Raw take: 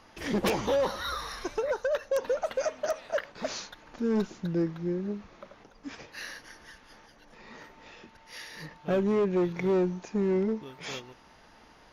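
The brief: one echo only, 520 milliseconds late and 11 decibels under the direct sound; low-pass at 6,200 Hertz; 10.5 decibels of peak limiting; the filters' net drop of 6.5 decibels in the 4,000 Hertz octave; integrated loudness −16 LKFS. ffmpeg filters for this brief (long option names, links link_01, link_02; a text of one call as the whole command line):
ffmpeg -i in.wav -af "lowpass=6200,equalizer=frequency=4000:width_type=o:gain=-7.5,alimiter=level_in=3dB:limit=-24dB:level=0:latency=1,volume=-3dB,aecho=1:1:520:0.282,volume=19.5dB" out.wav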